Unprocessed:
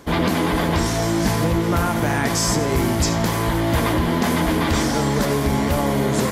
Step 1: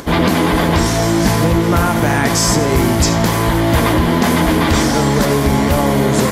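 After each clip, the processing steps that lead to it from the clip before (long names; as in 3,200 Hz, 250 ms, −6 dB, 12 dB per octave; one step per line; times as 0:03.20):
upward compression, threshold −32 dBFS
level +6 dB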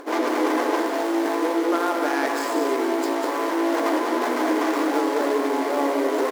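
running median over 15 samples
linear-phase brick-wall high-pass 260 Hz
single-tap delay 194 ms −6 dB
level −6 dB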